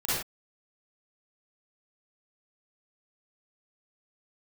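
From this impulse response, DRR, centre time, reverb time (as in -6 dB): -11.0 dB, 79 ms, no single decay rate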